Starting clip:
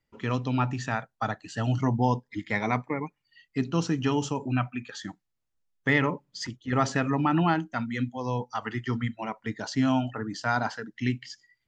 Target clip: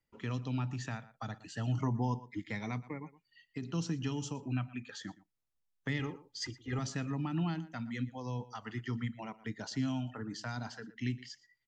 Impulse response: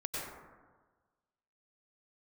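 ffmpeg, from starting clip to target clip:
-filter_complex "[0:a]asplit=3[link_01][link_02][link_03];[link_01]afade=type=out:start_time=2.97:duration=0.02[link_04];[link_02]acompressor=threshold=-29dB:ratio=6,afade=type=in:start_time=2.97:duration=0.02,afade=type=out:start_time=3.62:duration=0.02[link_05];[link_03]afade=type=in:start_time=3.62:duration=0.02[link_06];[link_04][link_05][link_06]amix=inputs=3:normalize=0,asettb=1/sr,asplit=3[link_07][link_08][link_09];[link_07]atrim=end=5.994[link_10];[link_08]atrim=start=5.99:end=6.79,asetpts=PTS-STARTPTS,afade=type=in:duration=0.004:curve=qsin,afade=type=out:start_time=0.796:duration=0.004:curve=qsin,aecho=1:1:2.5:0.77,atrim=end_sample=35280[link_11];[link_09]atrim=start=6.786[link_12];[link_10][link_11]acrossfade=duration=0.004:curve1=hsin:curve2=qsin[link_13];[link_13][link_12]acrossfade=duration=0.004:curve1=qsin:curve2=hsin,asplit=2[link_14][link_15];[link_15]adelay=116.6,volume=-20dB,highshelf=frequency=4000:gain=-2.62[link_16];[link_14][link_16]amix=inputs=2:normalize=0,acrossover=split=250|3000[link_17][link_18][link_19];[link_18]acompressor=threshold=-36dB:ratio=6[link_20];[link_17][link_20][link_19]amix=inputs=3:normalize=0,asettb=1/sr,asplit=3[link_21][link_22][link_23];[link_21]atrim=end=1.744[link_24];[link_22]atrim=start=1.74:end=2.41,asetpts=PTS-STARTPTS,afade=type=in:duration=0.004:curve=qsin,afade=type=out:start_time=0.666:duration=0.004:curve=qsin,equalizer=frequency=400:width_type=o:width=0.67:gain=5,equalizer=frequency=1000:width_type=o:width=0.67:gain=8,equalizer=frequency=4000:width_type=o:width=0.67:gain=-6[link_25];[link_23]atrim=start=2.406[link_26];[link_24][link_25]acrossfade=duration=0.004:curve1=hsin:curve2=qsin[link_27];[link_27][link_26]acrossfade=duration=0.004:curve1=qsin:curve2=hsin,volume=-6dB"

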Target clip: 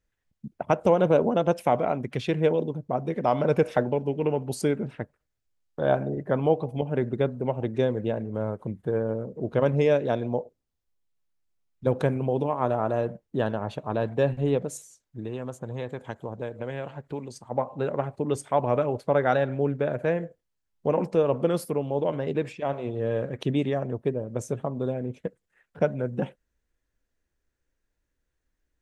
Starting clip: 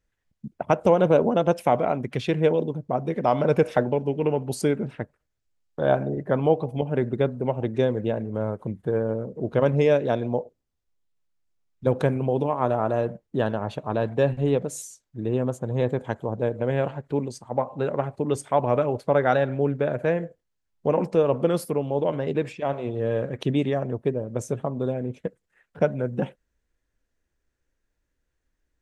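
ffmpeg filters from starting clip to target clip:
ffmpeg -i in.wav -filter_complex "[0:a]asettb=1/sr,asplit=3[link_01][link_02][link_03];[link_01]atrim=end=14.774[link_04];[link_02]atrim=start=14.77:end=17.36,asetpts=PTS-STARTPTS,afade=type=in:duration=0.004:curve=qsin,afade=type=out:start_time=2.586:duration=0.004:curve=qsin,acrossover=split=860|2300[link_05][link_06][link_07];[link_05]acompressor=threshold=-30dB:ratio=4[link_08];[link_06]acompressor=threshold=-39dB:ratio=4[link_09];[link_07]acompressor=threshold=-45dB:ratio=4[link_10];[link_08][link_09][link_10]amix=inputs=3:normalize=0[link_11];[link_03]atrim=start=17.356[link_12];[link_04][link_11]acrossfade=duration=0.004:curve1=hsin:curve2=qsin[link_13];[link_13][link_12]acrossfade=duration=0.004:curve1=qsin:curve2=hsin,volume=-2dB" out.wav

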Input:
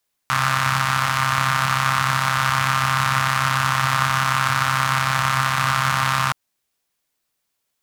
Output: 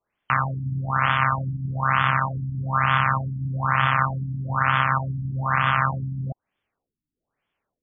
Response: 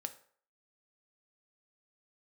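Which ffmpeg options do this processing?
-af "alimiter=limit=-7.5dB:level=0:latency=1:release=183,afftfilt=real='re*lt(b*sr/1024,310*pow(3600/310,0.5+0.5*sin(2*PI*1.1*pts/sr)))':imag='im*lt(b*sr/1024,310*pow(3600/310,0.5+0.5*sin(2*PI*1.1*pts/sr)))':win_size=1024:overlap=0.75,volume=4dB"

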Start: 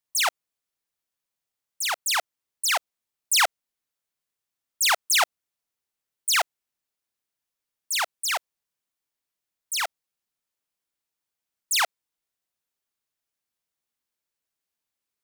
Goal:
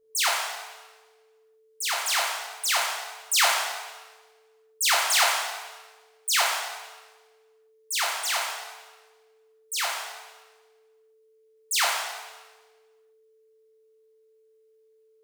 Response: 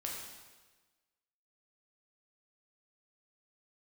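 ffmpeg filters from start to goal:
-filter_complex "[0:a]aeval=exprs='val(0)+0.000891*sin(2*PI*440*n/s)':channel_layout=same[link_01];[1:a]atrim=start_sample=2205[link_02];[link_01][link_02]afir=irnorm=-1:irlink=0"

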